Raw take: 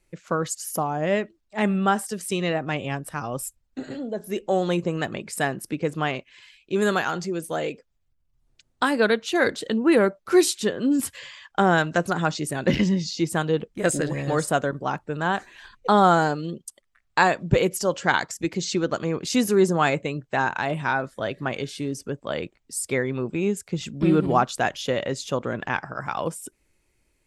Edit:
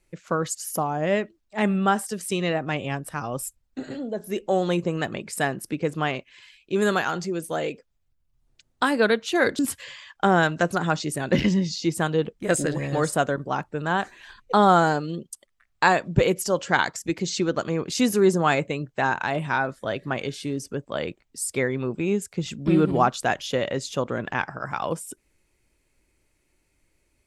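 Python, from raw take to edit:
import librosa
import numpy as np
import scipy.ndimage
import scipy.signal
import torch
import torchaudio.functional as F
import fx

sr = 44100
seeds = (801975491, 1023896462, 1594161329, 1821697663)

y = fx.edit(x, sr, fx.cut(start_s=9.59, length_s=1.35), tone=tone)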